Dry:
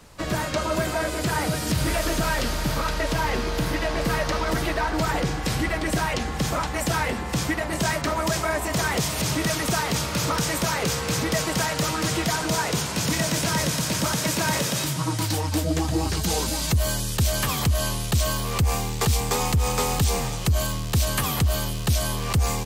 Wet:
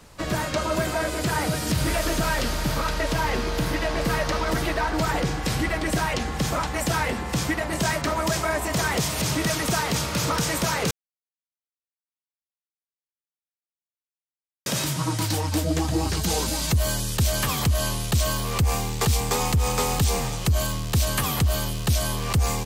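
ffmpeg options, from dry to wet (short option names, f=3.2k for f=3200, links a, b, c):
-filter_complex "[0:a]asplit=3[a][b][c];[a]atrim=end=10.91,asetpts=PTS-STARTPTS,afade=t=out:st=10.906:d=0.004:c=hsin[d];[b]atrim=start=10.91:end=14.66,asetpts=PTS-STARTPTS,volume=0[e];[c]atrim=start=14.66,asetpts=PTS-STARTPTS,afade=t=in:d=0.004:c=hsin[f];[d][e][f]concat=n=3:v=0:a=1"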